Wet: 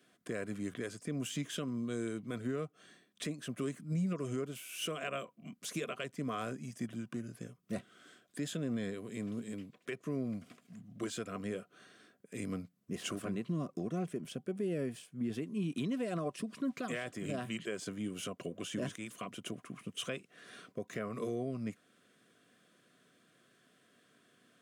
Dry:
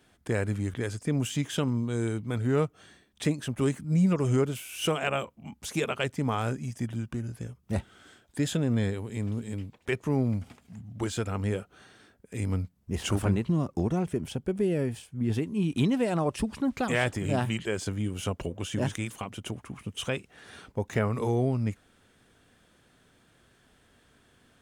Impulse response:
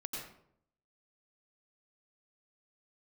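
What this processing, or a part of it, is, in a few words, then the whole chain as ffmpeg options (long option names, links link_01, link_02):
PA system with an anti-feedback notch: -af "highpass=frequency=150:width=0.5412,highpass=frequency=150:width=1.3066,asuperstop=centerf=860:order=20:qfactor=4.2,alimiter=limit=-23dB:level=0:latency=1:release=301,volume=-4.5dB"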